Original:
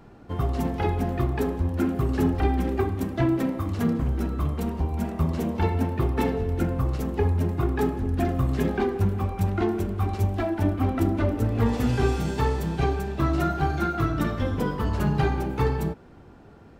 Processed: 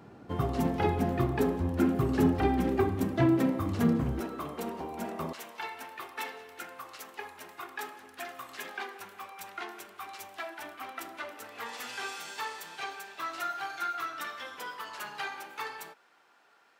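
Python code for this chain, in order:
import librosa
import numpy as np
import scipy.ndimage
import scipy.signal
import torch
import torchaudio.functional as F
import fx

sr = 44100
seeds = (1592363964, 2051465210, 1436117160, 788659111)

y = fx.highpass(x, sr, hz=fx.steps((0.0, 110.0), (4.2, 370.0), (5.33, 1300.0)), slope=12)
y = F.gain(torch.from_numpy(y), -1.0).numpy()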